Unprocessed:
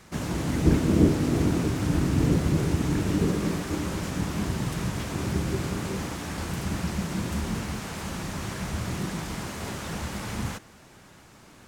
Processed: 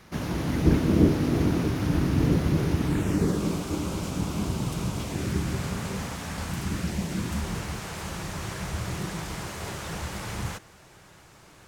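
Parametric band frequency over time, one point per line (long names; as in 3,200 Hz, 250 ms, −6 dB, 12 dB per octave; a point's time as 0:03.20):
parametric band −11 dB 0.36 octaves
0:02.83 7,800 Hz
0:03.44 1,800 Hz
0:05.03 1,800 Hz
0:05.57 330 Hz
0:06.43 330 Hz
0:07.04 1,500 Hz
0:07.47 240 Hz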